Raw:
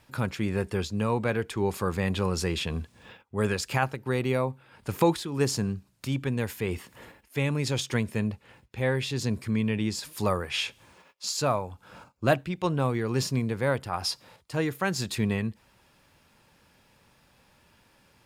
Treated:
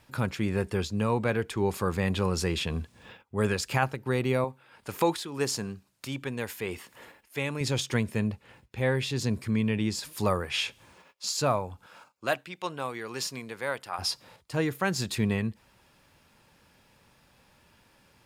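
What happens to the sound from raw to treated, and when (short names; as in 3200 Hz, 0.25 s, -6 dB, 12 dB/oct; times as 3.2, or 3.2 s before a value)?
4.44–7.61 low shelf 240 Hz -11.5 dB
11.86–13.99 HPF 990 Hz 6 dB/oct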